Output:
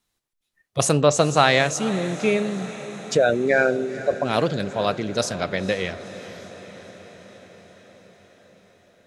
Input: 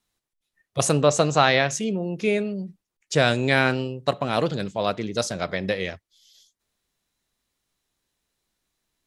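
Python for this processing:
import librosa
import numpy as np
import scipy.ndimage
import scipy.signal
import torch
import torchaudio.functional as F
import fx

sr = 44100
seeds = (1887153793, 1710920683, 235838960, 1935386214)

y = fx.envelope_sharpen(x, sr, power=3.0, at=(3.16, 4.24), fade=0.02)
y = fx.echo_diffused(y, sr, ms=476, feedback_pct=67, wet_db=-15)
y = y * librosa.db_to_amplitude(1.5)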